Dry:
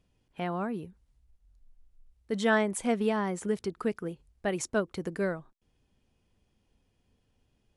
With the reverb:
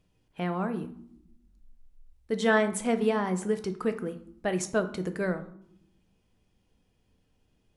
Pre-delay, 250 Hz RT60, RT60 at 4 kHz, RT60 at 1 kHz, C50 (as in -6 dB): 6 ms, 1.2 s, 0.45 s, 0.65 s, 13.5 dB